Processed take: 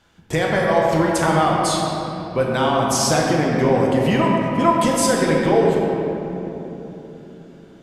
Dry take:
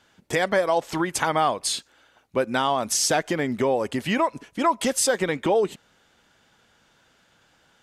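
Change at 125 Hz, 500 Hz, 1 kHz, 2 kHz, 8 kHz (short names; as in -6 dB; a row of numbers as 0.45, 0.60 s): +13.0, +6.0, +5.5, +3.5, +1.0 dB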